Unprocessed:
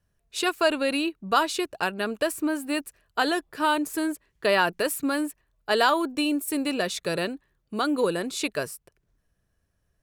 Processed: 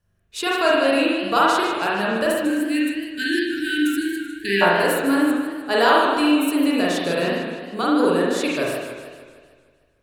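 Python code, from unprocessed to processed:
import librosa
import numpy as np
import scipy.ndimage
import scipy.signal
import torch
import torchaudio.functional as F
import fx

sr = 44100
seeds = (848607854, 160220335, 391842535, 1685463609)

y = fx.rev_spring(x, sr, rt60_s=1.0, pass_ms=(40,), chirp_ms=35, drr_db=-4.5)
y = fx.spec_erase(y, sr, start_s=2.44, length_s=2.17, low_hz=430.0, high_hz=1500.0)
y = fx.echo_warbled(y, sr, ms=153, feedback_pct=56, rate_hz=2.8, cents=154, wet_db=-9.5)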